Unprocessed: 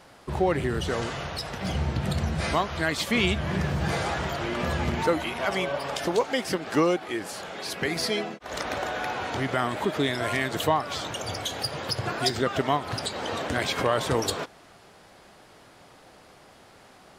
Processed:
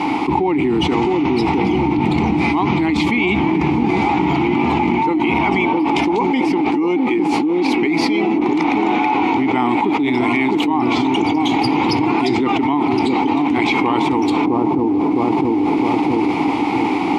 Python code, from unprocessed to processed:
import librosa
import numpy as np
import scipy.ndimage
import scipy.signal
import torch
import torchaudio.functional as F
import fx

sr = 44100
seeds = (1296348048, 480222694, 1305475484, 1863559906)

y = fx.vowel_filter(x, sr, vowel='u')
y = fx.echo_wet_lowpass(y, sr, ms=661, feedback_pct=37, hz=640.0, wet_db=-3)
y = fx.env_flatten(y, sr, amount_pct=100)
y = F.gain(torch.from_numpy(y), 6.0).numpy()